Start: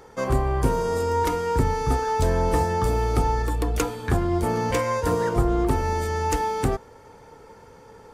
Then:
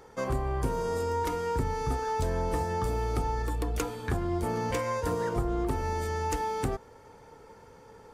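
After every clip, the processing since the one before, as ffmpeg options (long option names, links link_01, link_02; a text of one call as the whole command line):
ffmpeg -i in.wav -af "acompressor=threshold=-23dB:ratio=2,volume=-4.5dB" out.wav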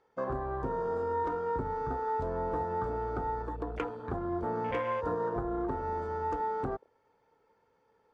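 ffmpeg -i in.wav -af "afwtdn=0.0141,lowpass=3900,lowshelf=frequency=180:gain=-11.5" out.wav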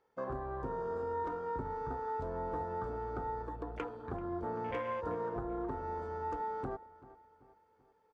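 ffmpeg -i in.wav -filter_complex "[0:a]asplit=2[link_01][link_02];[link_02]adelay=386,lowpass=frequency=3400:poles=1,volume=-18dB,asplit=2[link_03][link_04];[link_04]adelay=386,lowpass=frequency=3400:poles=1,volume=0.48,asplit=2[link_05][link_06];[link_06]adelay=386,lowpass=frequency=3400:poles=1,volume=0.48,asplit=2[link_07][link_08];[link_08]adelay=386,lowpass=frequency=3400:poles=1,volume=0.48[link_09];[link_01][link_03][link_05][link_07][link_09]amix=inputs=5:normalize=0,volume=-5dB" out.wav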